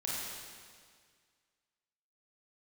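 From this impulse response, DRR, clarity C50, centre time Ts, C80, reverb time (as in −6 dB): −6.5 dB, −3.0 dB, 131 ms, −1.0 dB, 1.9 s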